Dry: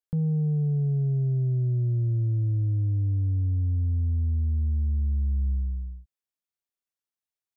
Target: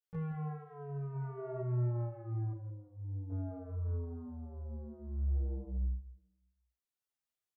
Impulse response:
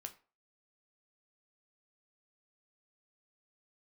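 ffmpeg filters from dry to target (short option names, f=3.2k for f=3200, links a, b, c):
-filter_complex "[0:a]asettb=1/sr,asplit=3[a][b][c];[a]atrim=end=2.514[d];[b]atrim=start=2.51:end=3.3,asetpts=PTS-STARTPTS,afade=t=in:d=0.004:c=qsin,afade=t=out:st=0.786:d=0.004:c=qsin,lowshelf=f=180:g=-11.5[e];[c]atrim=start=3.296[f];[d][e]acrossfade=d=0.004:c1=hsin:c2=qsin[g];[g][f]acrossfade=d=0.004:c1=qsin:c2=hsin,asoftclip=type=tanh:threshold=-33dB,aecho=1:1:169|338|507|676:0.335|0.111|0.0365|0.012,tremolo=f=0.55:d=0.58,asplit=3[h][i][j];[h]afade=t=out:st=1.12:d=0.02[k];[i]equalizer=f=650:w=0.71:g=10.5,afade=t=in:st=1.12:d=0.02,afade=t=out:st=1.59:d=0.02[l];[j]afade=t=in:st=1.59:d=0.02[m];[k][l][m]amix=inputs=3:normalize=0,asplit=2[n][o];[1:a]atrim=start_sample=2205,adelay=17[p];[o][p]afir=irnorm=-1:irlink=0,volume=10.5dB[q];[n][q]amix=inputs=2:normalize=0,asplit=2[r][s];[s]adelay=6.2,afreqshift=-1.6[t];[r][t]amix=inputs=2:normalize=1,volume=-6dB"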